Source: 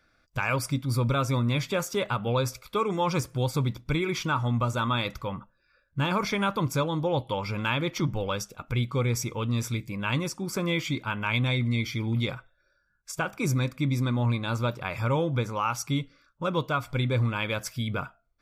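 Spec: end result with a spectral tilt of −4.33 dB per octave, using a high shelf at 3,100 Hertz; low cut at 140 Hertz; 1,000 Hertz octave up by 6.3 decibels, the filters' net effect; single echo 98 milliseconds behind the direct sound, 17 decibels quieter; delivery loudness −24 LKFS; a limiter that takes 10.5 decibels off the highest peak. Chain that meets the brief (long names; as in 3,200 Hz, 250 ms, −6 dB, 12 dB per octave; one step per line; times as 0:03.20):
high-pass filter 140 Hz
parametric band 1,000 Hz +7 dB
high-shelf EQ 3,100 Hz +5 dB
brickwall limiter −18.5 dBFS
single-tap delay 98 ms −17 dB
level +6 dB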